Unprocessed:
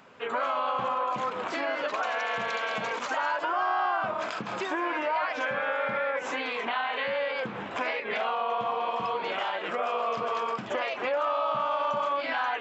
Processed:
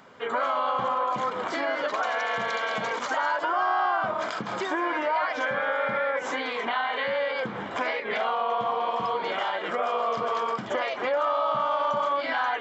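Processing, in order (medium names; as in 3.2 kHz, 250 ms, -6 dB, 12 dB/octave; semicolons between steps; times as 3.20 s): band-stop 2.6 kHz, Q 6.5; trim +2.5 dB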